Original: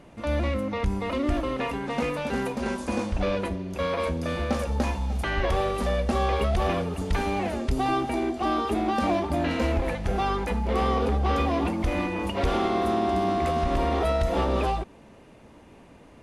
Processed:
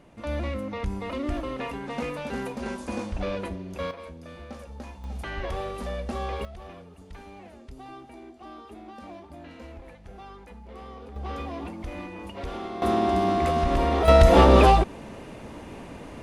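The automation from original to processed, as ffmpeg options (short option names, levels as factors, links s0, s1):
-af "asetnsamples=n=441:p=0,asendcmd='3.91 volume volume -14.5dB;5.04 volume volume -7dB;6.45 volume volume -18.5dB;11.16 volume volume -10dB;12.82 volume volume 1.5dB;14.08 volume volume 10dB',volume=0.631"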